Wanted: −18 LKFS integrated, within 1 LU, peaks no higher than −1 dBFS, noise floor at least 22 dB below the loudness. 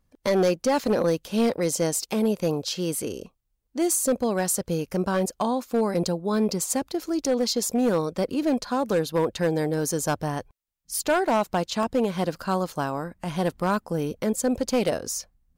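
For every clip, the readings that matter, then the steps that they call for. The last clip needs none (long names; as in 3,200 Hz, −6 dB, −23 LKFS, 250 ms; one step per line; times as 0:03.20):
share of clipped samples 1.1%; peaks flattened at −16.0 dBFS; number of dropouts 1; longest dropout 1.4 ms; integrated loudness −25.5 LKFS; sample peak −16.0 dBFS; target loudness −18.0 LKFS
→ clipped peaks rebuilt −16 dBFS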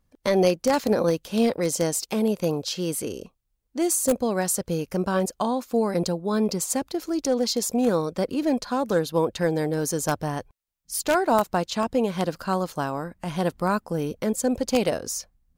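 share of clipped samples 0.0%; number of dropouts 1; longest dropout 1.4 ms
→ repair the gap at 0:11.83, 1.4 ms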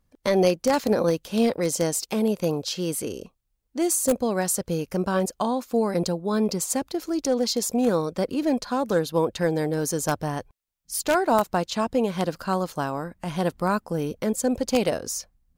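number of dropouts 0; integrated loudness −25.0 LKFS; sample peak −7.0 dBFS; target loudness −18.0 LKFS
→ level +7 dB
brickwall limiter −1 dBFS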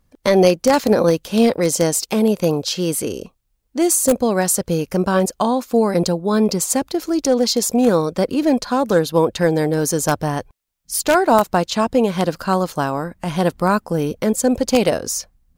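integrated loudness −18.0 LKFS; sample peak −1.0 dBFS; background noise floor −65 dBFS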